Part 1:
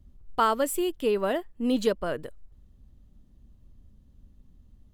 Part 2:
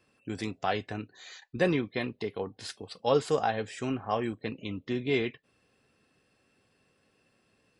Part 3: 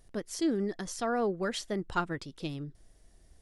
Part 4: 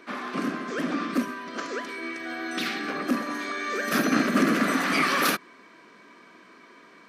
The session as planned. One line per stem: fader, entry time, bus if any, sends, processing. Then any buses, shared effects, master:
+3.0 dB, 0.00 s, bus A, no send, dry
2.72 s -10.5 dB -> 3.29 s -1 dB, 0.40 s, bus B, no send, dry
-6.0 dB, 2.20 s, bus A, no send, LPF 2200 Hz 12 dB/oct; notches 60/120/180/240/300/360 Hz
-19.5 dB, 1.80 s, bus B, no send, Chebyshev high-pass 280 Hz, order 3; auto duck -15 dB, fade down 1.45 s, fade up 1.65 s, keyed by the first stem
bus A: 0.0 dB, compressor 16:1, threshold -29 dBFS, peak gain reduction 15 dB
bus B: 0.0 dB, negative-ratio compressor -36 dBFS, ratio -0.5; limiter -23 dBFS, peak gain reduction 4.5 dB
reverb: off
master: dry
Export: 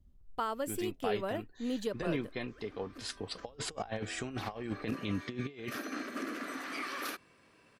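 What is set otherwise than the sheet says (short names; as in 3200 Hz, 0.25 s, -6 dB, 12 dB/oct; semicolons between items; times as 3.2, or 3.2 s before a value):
stem 1 +3.0 dB -> -9.0 dB; stem 3: muted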